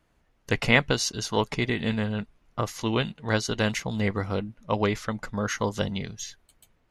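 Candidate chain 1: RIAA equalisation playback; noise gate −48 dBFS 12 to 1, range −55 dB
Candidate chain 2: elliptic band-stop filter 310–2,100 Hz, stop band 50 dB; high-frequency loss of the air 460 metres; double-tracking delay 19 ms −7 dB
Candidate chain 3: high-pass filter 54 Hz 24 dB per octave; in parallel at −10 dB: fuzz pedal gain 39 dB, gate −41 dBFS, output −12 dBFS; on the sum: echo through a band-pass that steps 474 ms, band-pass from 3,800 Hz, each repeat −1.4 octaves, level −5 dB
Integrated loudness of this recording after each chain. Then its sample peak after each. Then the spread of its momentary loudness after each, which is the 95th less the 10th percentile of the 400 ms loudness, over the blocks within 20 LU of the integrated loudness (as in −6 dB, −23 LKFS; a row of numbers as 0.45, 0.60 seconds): −21.5, −31.0, −21.5 LKFS; −2.0, −11.5, −4.0 dBFS; 7, 8, 8 LU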